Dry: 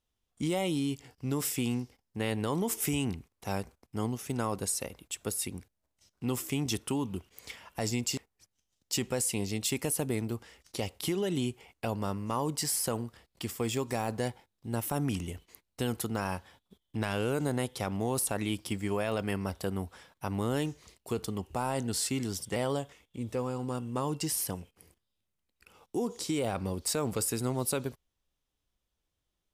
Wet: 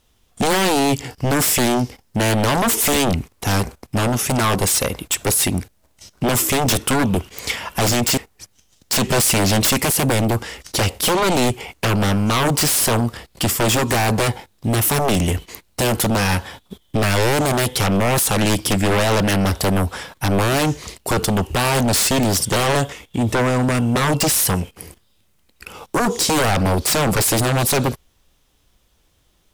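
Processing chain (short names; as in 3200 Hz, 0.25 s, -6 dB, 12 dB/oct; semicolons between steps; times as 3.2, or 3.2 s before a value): sine folder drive 13 dB, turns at -19 dBFS; 9.09–9.71 power-law curve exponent 0.7; gain +5.5 dB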